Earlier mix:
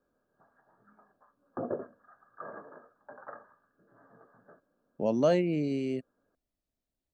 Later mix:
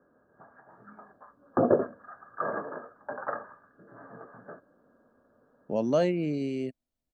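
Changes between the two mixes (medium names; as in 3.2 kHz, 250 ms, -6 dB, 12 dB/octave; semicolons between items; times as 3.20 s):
speech: entry +0.70 s; background +12.0 dB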